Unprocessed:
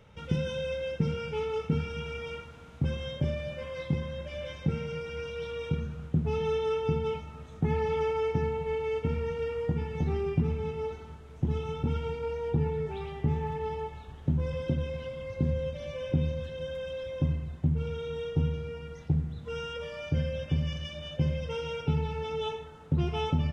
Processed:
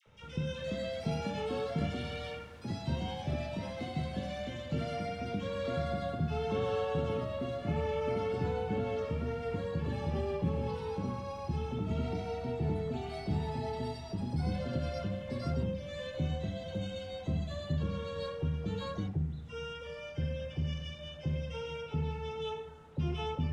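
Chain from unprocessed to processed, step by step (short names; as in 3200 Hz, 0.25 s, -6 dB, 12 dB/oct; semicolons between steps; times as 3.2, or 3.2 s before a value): echoes that change speed 0.408 s, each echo +4 st, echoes 2; in parallel at -8 dB: soft clip -26 dBFS, distortion -11 dB; on the sum: de-hum 47.22 Hz, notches 35; dispersion lows, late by 64 ms, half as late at 1100 Hz; gain -7.5 dB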